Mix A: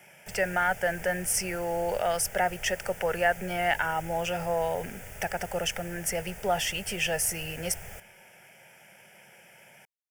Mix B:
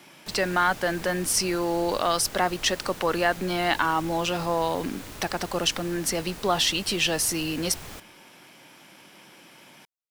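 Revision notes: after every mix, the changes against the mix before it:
master: remove phaser with its sweep stopped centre 1,100 Hz, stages 6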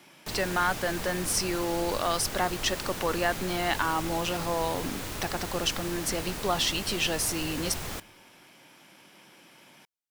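speech −4.0 dB
background +5.0 dB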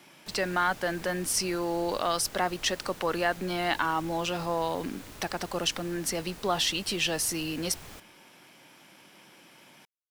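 background −10.5 dB

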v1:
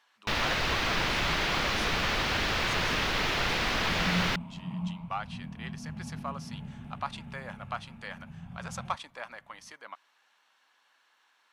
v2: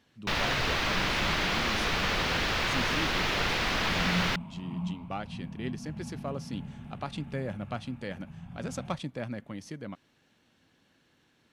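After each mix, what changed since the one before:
speech: remove high-pass with resonance 1,000 Hz, resonance Q 2.2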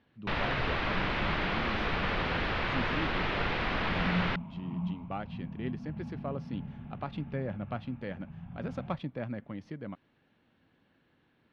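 master: add high-frequency loss of the air 340 metres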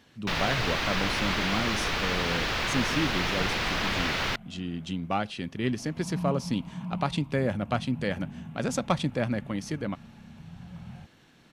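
speech +8.0 dB
second sound: entry +2.10 s
master: remove high-frequency loss of the air 340 metres

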